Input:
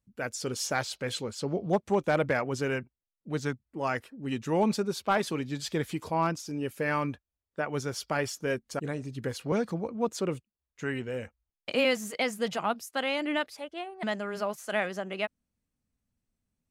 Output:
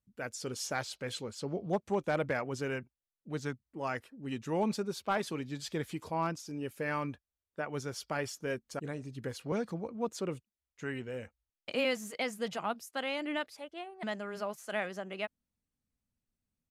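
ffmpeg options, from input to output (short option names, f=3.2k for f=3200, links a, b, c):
-af "aresample=32000,aresample=44100,volume=-5.5dB"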